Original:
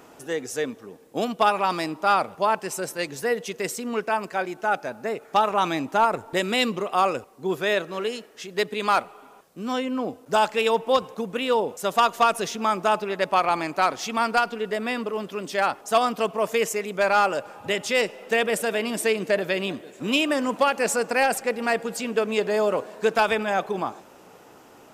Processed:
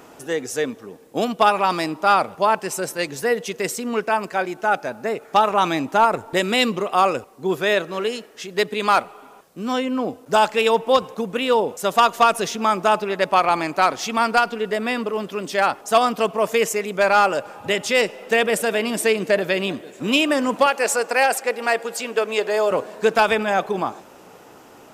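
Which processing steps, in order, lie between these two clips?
20.66–22.71 HPF 390 Hz 12 dB/oct; gain +4 dB

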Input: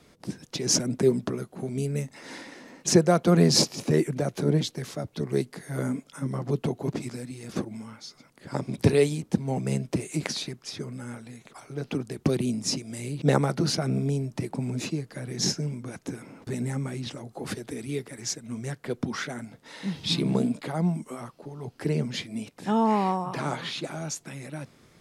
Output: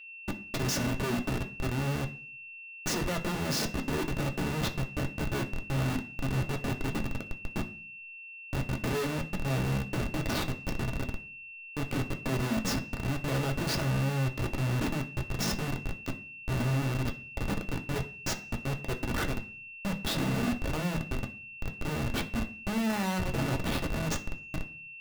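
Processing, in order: 9.88–11.09 requantised 6-bit, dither triangular; Schmitt trigger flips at -29 dBFS; whine 2700 Hz -44 dBFS; on a send: reverb RT60 0.45 s, pre-delay 3 ms, DRR 3 dB; on the sum: gain -3 dB

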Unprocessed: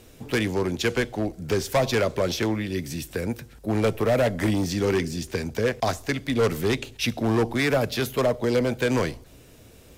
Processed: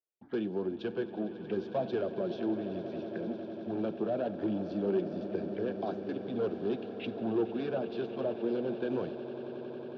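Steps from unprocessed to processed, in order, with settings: gate -39 dBFS, range -39 dB; flange 1.1 Hz, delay 1.1 ms, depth 4.6 ms, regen -49%; speaker cabinet 170–3100 Hz, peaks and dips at 200 Hz +7 dB, 350 Hz +9 dB, 700 Hz +4 dB, 1100 Hz -4 dB, 1600 Hz +7 dB; envelope phaser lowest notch 240 Hz, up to 2000 Hz, full sweep at -29 dBFS; swelling echo 91 ms, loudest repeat 8, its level -17 dB; gain -8.5 dB

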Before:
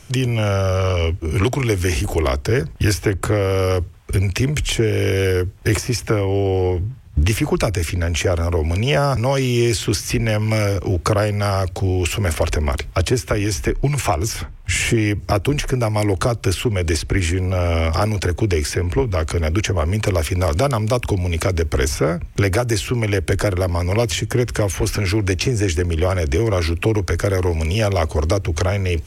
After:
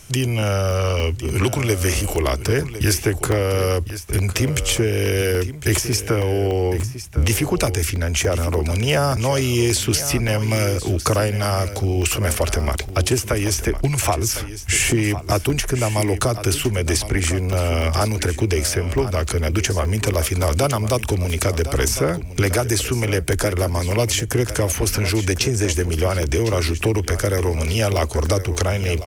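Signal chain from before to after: high shelf 6800 Hz +11 dB; on a send: echo 1.056 s -12.5 dB; on the sum: crackling interface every 0.29 s, samples 64, zero, from 0.42; gain -1.5 dB

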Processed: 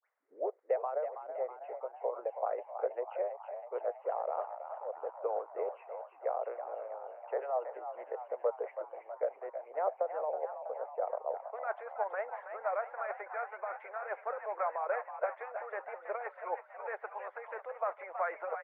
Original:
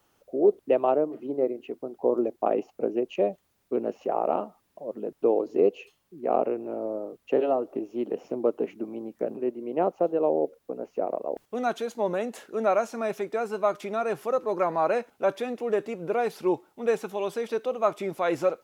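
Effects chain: tape start at the beginning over 0.47 s; Chebyshev band-pass 500–2100 Hz, order 4; limiter -21 dBFS, peak gain reduction 9 dB; harmonic-percussive split harmonic -14 dB; frequency-shifting echo 0.324 s, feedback 62%, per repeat +52 Hz, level -9 dB

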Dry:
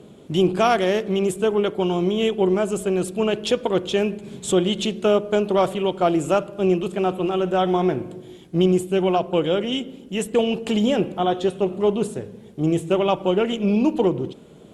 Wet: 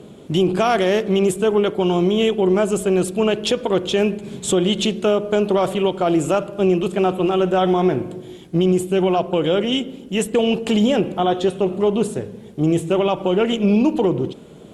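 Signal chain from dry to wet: limiter -13 dBFS, peak gain reduction 7 dB; gain +4.5 dB

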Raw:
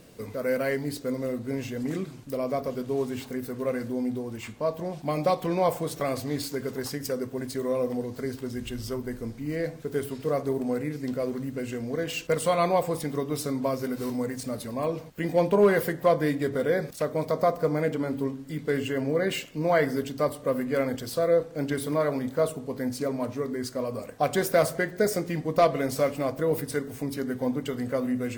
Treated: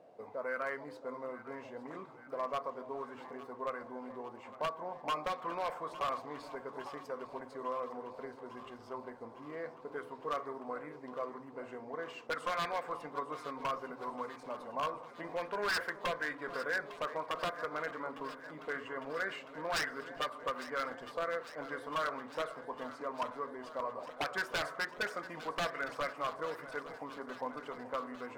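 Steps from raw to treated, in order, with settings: auto-wah 690–1600 Hz, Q 4.3, up, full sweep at -19 dBFS; wavefolder -32.5 dBFS; echo with dull and thin repeats by turns 0.427 s, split 820 Hz, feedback 83%, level -13 dB; gain +5 dB

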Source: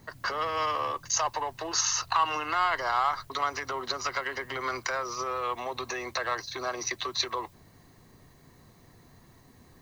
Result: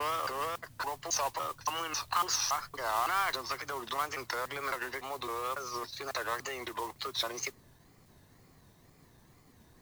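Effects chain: slices in reverse order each 0.278 s, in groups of 3; modulation noise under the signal 14 dB; wow and flutter 150 cents; gain -4.5 dB

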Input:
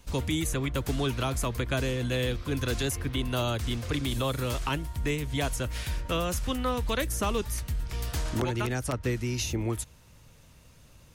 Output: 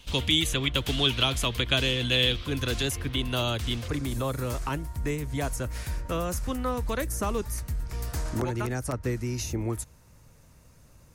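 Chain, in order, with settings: bell 3200 Hz +15 dB 0.84 oct, from 2.46 s +5.5 dB, from 3.88 s -9 dB

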